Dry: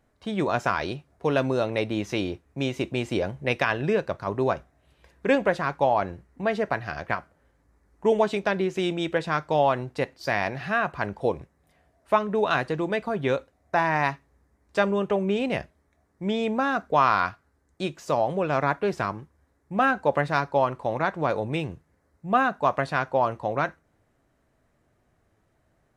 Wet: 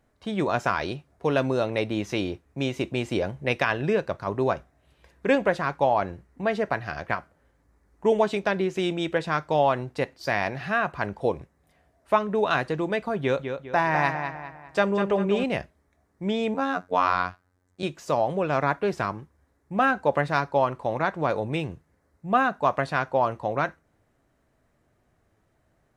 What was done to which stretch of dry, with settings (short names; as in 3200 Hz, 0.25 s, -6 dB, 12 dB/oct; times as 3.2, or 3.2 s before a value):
13.19–15.44 darkening echo 0.201 s, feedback 41%, low-pass 4400 Hz, level -7 dB
16.54–17.83 robotiser 90.5 Hz